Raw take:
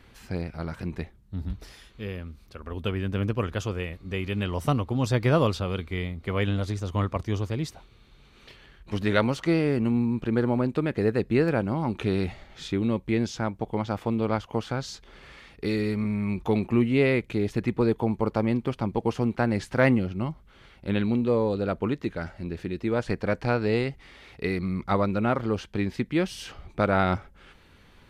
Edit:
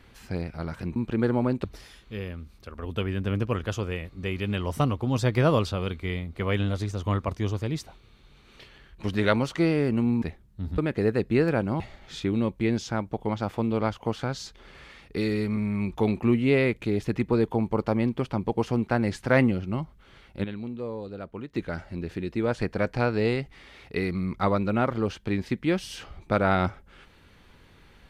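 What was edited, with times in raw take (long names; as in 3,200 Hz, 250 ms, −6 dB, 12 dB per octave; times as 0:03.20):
0:00.96–0:01.52: swap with 0:10.10–0:10.78
0:11.80–0:12.28: remove
0:20.92–0:22.02: clip gain −10.5 dB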